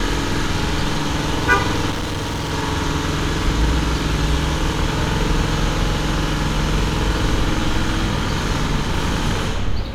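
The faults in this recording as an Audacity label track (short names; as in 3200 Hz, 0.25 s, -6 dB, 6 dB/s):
1.900000	2.520000	clipped -20.5 dBFS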